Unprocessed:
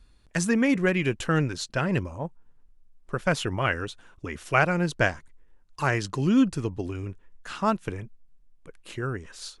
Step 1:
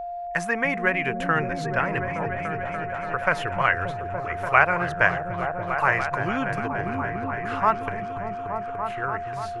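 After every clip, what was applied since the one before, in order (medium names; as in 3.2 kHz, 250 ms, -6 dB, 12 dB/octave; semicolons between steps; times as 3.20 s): graphic EQ 125/250/1000/2000/4000/8000 Hz -4/-10/+7/+8/-7/-9 dB; delay with an opening low-pass 290 ms, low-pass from 200 Hz, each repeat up 1 oct, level 0 dB; whistle 700 Hz -29 dBFS; trim -1 dB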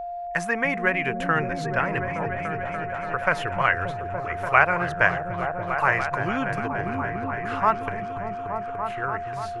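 no audible change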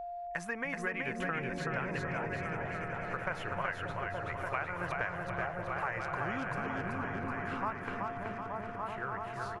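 compression, threshold -24 dBFS, peak gain reduction 12.5 dB; on a send: feedback delay 378 ms, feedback 52%, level -3.5 dB; on the sum: trim -8.5 dB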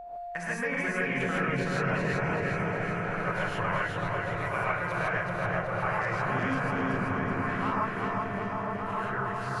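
gated-style reverb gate 180 ms rising, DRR -5.5 dB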